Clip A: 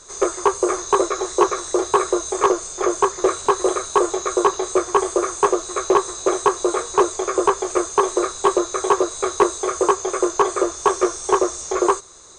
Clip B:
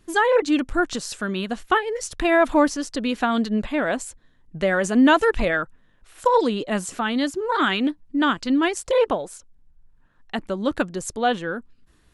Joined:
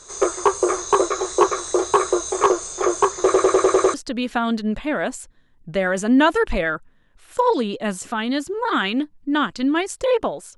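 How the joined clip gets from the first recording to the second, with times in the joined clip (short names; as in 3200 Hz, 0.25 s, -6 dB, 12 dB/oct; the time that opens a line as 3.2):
clip A
3.24 stutter in place 0.10 s, 7 plays
3.94 switch to clip B from 2.81 s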